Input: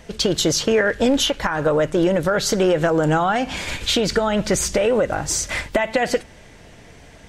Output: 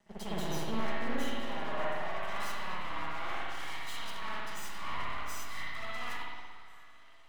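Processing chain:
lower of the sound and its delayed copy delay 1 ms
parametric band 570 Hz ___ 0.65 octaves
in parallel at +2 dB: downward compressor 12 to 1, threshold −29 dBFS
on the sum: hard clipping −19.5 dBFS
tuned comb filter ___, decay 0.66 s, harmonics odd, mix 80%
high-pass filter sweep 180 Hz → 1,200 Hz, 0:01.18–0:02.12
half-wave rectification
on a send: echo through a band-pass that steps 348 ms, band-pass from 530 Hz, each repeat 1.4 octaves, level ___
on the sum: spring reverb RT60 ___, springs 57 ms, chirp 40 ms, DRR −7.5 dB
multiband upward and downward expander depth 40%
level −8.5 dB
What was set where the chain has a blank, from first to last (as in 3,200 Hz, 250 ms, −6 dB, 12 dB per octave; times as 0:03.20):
+8.5 dB, 74 Hz, −9.5 dB, 1.9 s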